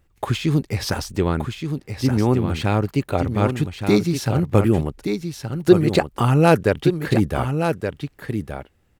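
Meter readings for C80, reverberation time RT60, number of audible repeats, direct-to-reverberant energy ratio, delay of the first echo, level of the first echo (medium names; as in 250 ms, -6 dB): no reverb, no reverb, 1, no reverb, 1172 ms, -7.0 dB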